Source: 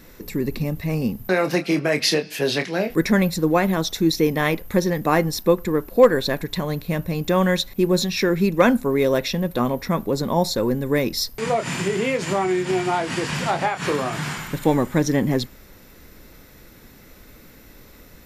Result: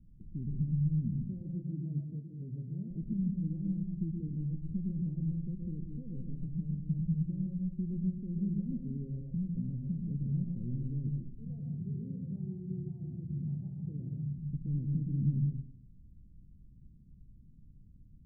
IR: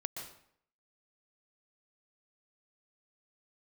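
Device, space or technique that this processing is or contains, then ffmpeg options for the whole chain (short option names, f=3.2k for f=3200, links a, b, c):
club heard from the street: -filter_complex "[0:a]alimiter=limit=-12dB:level=0:latency=1:release=41,lowpass=f=180:w=0.5412,lowpass=f=180:w=1.3066[a];[1:a]atrim=start_sample=2205[b];[a][b]afir=irnorm=-1:irlink=0,volume=-5dB"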